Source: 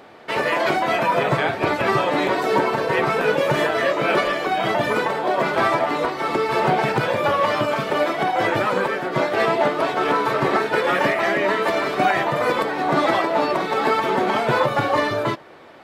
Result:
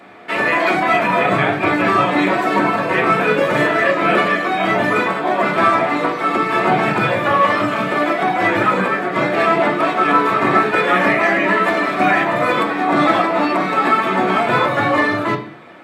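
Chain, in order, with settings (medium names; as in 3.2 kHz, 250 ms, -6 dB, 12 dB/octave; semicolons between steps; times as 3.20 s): treble shelf 11 kHz -3.5 dB; reverberation RT60 0.50 s, pre-delay 3 ms, DRR -2 dB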